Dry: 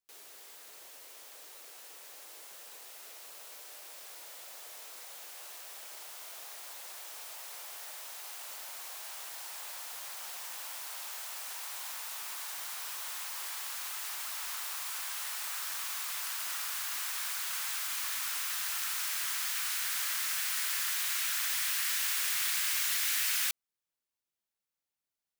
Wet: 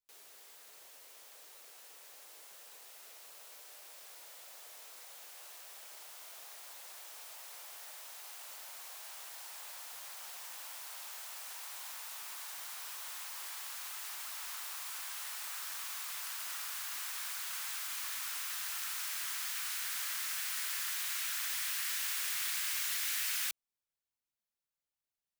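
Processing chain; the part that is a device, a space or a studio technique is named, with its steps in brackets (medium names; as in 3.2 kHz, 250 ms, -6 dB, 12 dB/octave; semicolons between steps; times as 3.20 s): low shelf boost with a cut just above (bass shelf 79 Hz +6.5 dB; peaking EQ 310 Hz -3.5 dB 0.64 oct); trim -4.5 dB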